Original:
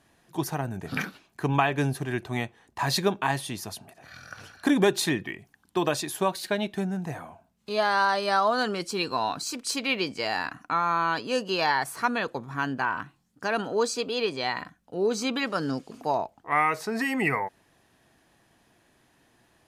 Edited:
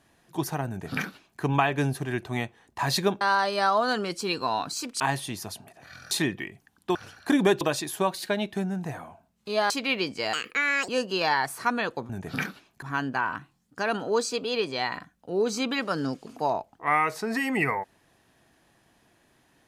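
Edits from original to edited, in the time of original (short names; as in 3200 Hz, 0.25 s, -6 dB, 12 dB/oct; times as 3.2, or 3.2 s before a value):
0.68–1.41 copy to 12.47
4.32–4.98 move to 5.82
7.91–9.7 move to 3.21
10.33–11.26 speed 168%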